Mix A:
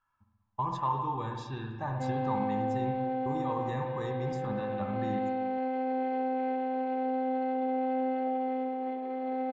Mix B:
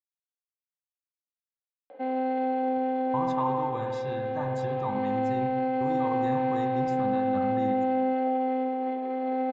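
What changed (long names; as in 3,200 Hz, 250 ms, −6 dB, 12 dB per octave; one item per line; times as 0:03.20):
speech: entry +2.55 s
background +4.5 dB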